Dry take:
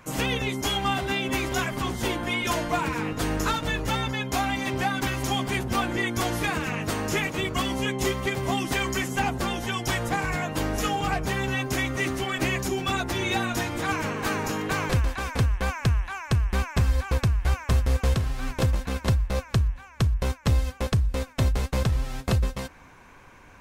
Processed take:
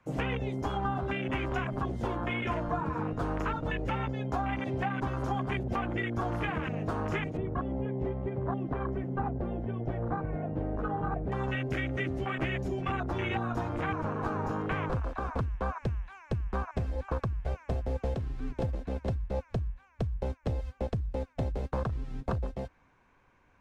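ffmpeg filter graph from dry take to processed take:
ffmpeg -i in.wav -filter_complex "[0:a]asettb=1/sr,asplit=3[link_01][link_02][link_03];[link_01]atrim=end=7.374[link_04];[link_02]atrim=start=7.37:end=11.32,asetpts=PTS-STARTPTS,afade=type=in:duration=0.004:curve=qsin,afade=type=out:start_time=3.946:duration=0.004:curve=qsin,lowpass=1400,equalizer=frequency=790:width_type=o:width=0.98:gain=-4[link_05];[link_03]atrim=start=11.316[link_06];[link_04][link_05]acrossfade=duration=0.004:curve1=hsin:curve2=qsin[link_07];[link_07][link_06]acrossfade=duration=0.004:curve1=qsin:curve2=hsin,afwtdn=0.0398,aemphasis=mode=reproduction:type=50fm,acrossover=split=170|340|690[link_08][link_09][link_10][link_11];[link_08]acompressor=threshold=-35dB:ratio=4[link_12];[link_09]acompressor=threshold=-45dB:ratio=4[link_13];[link_10]acompressor=threshold=-41dB:ratio=4[link_14];[link_11]acompressor=threshold=-36dB:ratio=4[link_15];[link_12][link_13][link_14][link_15]amix=inputs=4:normalize=0,volume=1.5dB" out.wav

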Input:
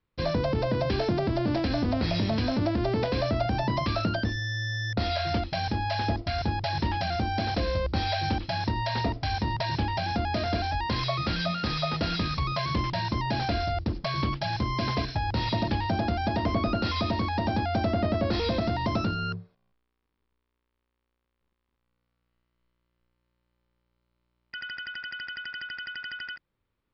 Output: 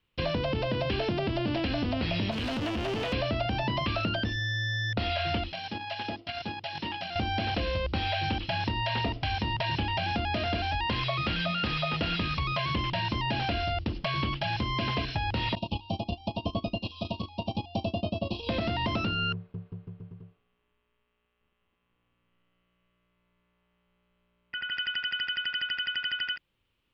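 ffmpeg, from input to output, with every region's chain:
ffmpeg -i in.wav -filter_complex "[0:a]asettb=1/sr,asplit=3[link_01][link_02][link_03];[link_01]atrim=end=2.314[link_04];[link_02]atrim=start=2.31:end=3.13,asetpts=PTS-STARTPTS,afade=type=in:duration=0.004:curve=qsin,afade=type=out:start_time=0.816:duration=0.004:curve=qsin,asoftclip=type=hard:threshold=-30.5dB,asplit=2[link_05][link_06];[link_06]adelay=13,volume=-10.5dB[link_07];[link_05][link_07]amix=inputs=2:normalize=0,atrim=end_sample=36162[link_08];[link_03]atrim=start=3.126[link_09];[link_04][link_08]acrossfade=duration=0.004:curve1=hsin:curve2=qsin[link_10];[link_10][link_09]acrossfade=duration=0.004:curve1=qsin:curve2=hsin,asettb=1/sr,asplit=3[link_11][link_12][link_13];[link_11]atrim=end=5.524[link_14];[link_12]atrim=start=5.52:end=7.16,asetpts=PTS-STARTPTS,afade=type=in:duration=0.004:curve=qsin,afade=type=out:start_time=1.636:duration=0.004:curve=qsin,agate=range=-11dB:threshold=-28dB:ratio=16:release=100:detection=peak,highpass=170,acompressor=threshold=-34dB:ratio=2.5:attack=3.2:release=140:knee=1:detection=peak[link_15];[link_13]atrim=start=7.156[link_16];[link_14][link_15]acrossfade=duration=0.004:curve1=hsin:curve2=qsin[link_17];[link_17][link_16]acrossfade=duration=0.004:curve1=qsin:curve2=hsin,asettb=1/sr,asplit=3[link_18][link_19][link_20];[link_18]atrim=end=15.554[link_21];[link_19]atrim=start=15.55:end=18.49,asetpts=PTS-STARTPTS,afade=type=in:duration=0.004:curve=qsin,afade=type=out:start_time=2.936:duration=0.004:curve=qsin,agate=range=-22dB:threshold=-26dB:ratio=16:release=100:detection=peak,asuperstop=centerf=1700:order=12:qfactor=1.2[link_22];[link_20]atrim=start=18.486[link_23];[link_21][link_22]acrossfade=duration=0.004:curve1=hsin:curve2=qsin[link_24];[link_24][link_23]acrossfade=duration=0.004:curve1=qsin:curve2=hsin,asettb=1/sr,asplit=3[link_25][link_26][link_27];[link_25]atrim=end=19.334[link_28];[link_26]atrim=start=19.33:end=24.72,asetpts=PTS-STARTPTS,afade=type=in:duration=0.004:curve=qsin,afade=type=out:start_time=5.386:duration=0.004:curve=qsin,lowpass=2000,aecho=1:1:210|388.5|540.2|669.2|778.8|872:0.794|0.631|0.501|0.398|0.316|0.251,atrim=end_sample=237699[link_29];[link_27]atrim=start=24.716[link_30];[link_28][link_29]acrossfade=duration=0.004:curve1=hsin:curve2=qsin[link_31];[link_31][link_30]acrossfade=duration=0.004:curve1=qsin:curve2=hsin,acompressor=threshold=-30dB:ratio=2.5,equalizer=frequency=2900:width_type=o:width=0.59:gain=14.5,acrossover=split=2700[link_32][link_33];[link_33]acompressor=threshold=-41dB:ratio=4:attack=1:release=60[link_34];[link_32][link_34]amix=inputs=2:normalize=0,volume=1.5dB" out.wav

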